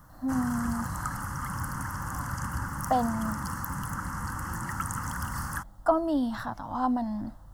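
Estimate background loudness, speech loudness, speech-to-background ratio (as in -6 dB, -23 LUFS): -34.5 LUFS, -30.5 LUFS, 4.0 dB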